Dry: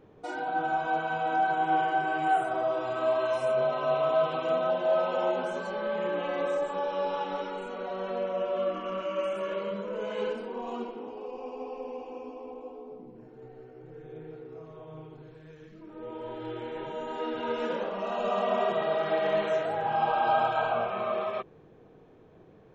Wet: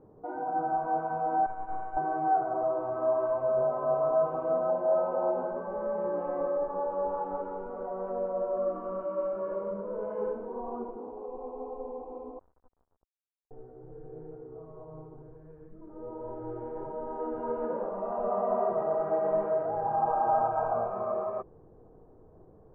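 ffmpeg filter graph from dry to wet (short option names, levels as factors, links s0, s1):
-filter_complex "[0:a]asettb=1/sr,asplit=3[s0][s1][s2];[s0]atrim=end=1.464[s3];[s1]atrim=start=1.46:end=1.97,asetpts=PTS-STARTPTS,afade=t=in:d=0.004:c=qsin,afade=t=out:st=0.506:d=0.004:c=qsin,highpass=f=1200:p=1,aeval=exprs='(tanh(17.8*val(0)+0.8)-tanh(0.8))/17.8':c=same[s4];[s2]atrim=start=1.966[s5];[s3][s4]acrossfade=d=0.004:c1=hsin:c2=qsin[s6];[s6][s5]acrossfade=d=0.004:c1=qsin:c2=hsin,asettb=1/sr,asplit=3[s7][s8][s9];[s7]atrim=end=12.394[s10];[s8]atrim=start=12.39:end=13.51,asetpts=PTS-STARTPTS,afade=t=in:d=0.004:c=qsin,afade=t=out:st=1.116:d=0.004:c=qsin,highshelf=f=2800:g=-11,aeval=exprs='(tanh(100*val(0)+0.15)-tanh(0.15))/100':c=same,acrusher=bits=5:mix=0:aa=0.5[s11];[s9]atrim=start=13.506[s12];[s10][s11]acrossfade=d=0.004:c1=hsin:c2=qsin[s13];[s13][s12]acrossfade=d=0.004:c1=qsin:c2=hsin,lowpass=f=1100:w=0.5412,lowpass=f=1100:w=1.3066,asubboost=boost=4:cutoff=73"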